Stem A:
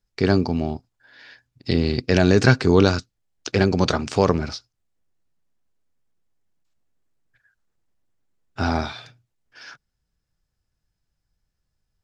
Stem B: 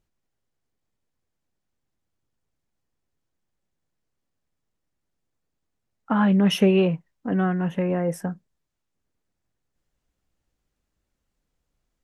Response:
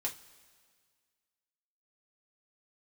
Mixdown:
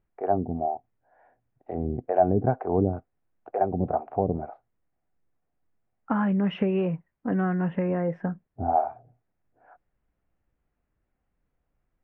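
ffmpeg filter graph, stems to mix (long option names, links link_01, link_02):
-filter_complex "[0:a]acrossover=split=430[link_01][link_02];[link_01]aeval=exprs='val(0)*(1-1/2+1/2*cos(2*PI*2.1*n/s))':channel_layout=same[link_03];[link_02]aeval=exprs='val(0)*(1-1/2-1/2*cos(2*PI*2.1*n/s))':channel_layout=same[link_04];[link_03][link_04]amix=inputs=2:normalize=0,lowpass=frequency=730:width_type=q:width=8.5,volume=-6dB[link_05];[1:a]acompressor=threshold=-23dB:ratio=4,volume=0.5dB[link_06];[link_05][link_06]amix=inputs=2:normalize=0,lowpass=frequency=2300:width=0.5412,lowpass=frequency=2300:width=1.3066"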